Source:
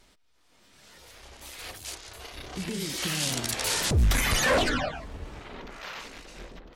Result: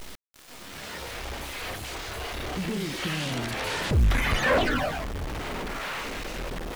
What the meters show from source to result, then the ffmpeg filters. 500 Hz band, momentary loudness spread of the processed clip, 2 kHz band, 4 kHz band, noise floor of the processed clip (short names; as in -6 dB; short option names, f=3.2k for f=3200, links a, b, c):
+2.5 dB, 14 LU, +2.0 dB, -2.0 dB, -46 dBFS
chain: -filter_complex "[0:a]aeval=exprs='val(0)+0.5*0.0266*sgn(val(0))':c=same,acrusher=bits=7:dc=4:mix=0:aa=0.000001,acrossover=split=3300[a][b];[b]acompressor=threshold=-42dB:ratio=4:attack=1:release=60[c];[a][c]amix=inputs=2:normalize=0"